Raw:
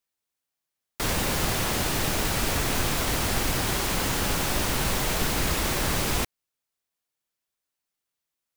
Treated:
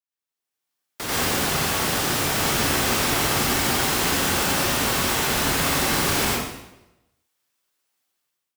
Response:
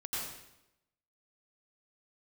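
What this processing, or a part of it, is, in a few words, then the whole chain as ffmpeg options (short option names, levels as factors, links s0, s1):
far laptop microphone: -filter_complex "[1:a]atrim=start_sample=2205[s0];[0:a][s0]afir=irnorm=-1:irlink=0,highpass=f=180:p=1,dynaudnorm=f=250:g=5:m=6.31,volume=0.398"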